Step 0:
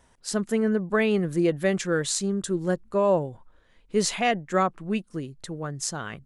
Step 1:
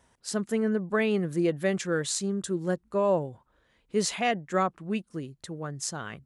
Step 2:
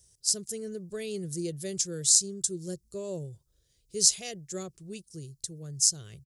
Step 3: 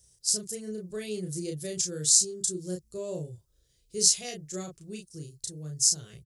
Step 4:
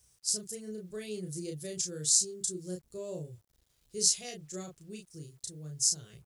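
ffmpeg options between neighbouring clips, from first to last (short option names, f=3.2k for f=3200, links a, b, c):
-af "highpass=50,volume=-3dB"
-af "firequalizer=gain_entry='entry(130,0);entry(240,-19);entry(370,-7);entry(880,-27);entry(5100,10)':delay=0.05:min_phase=1,volume=1dB"
-filter_complex "[0:a]asplit=2[a][b];[b]adelay=33,volume=-3dB[c];[a][c]amix=inputs=2:normalize=0,volume=-1dB"
-af "acrusher=bits=10:mix=0:aa=0.000001,volume=-4.5dB"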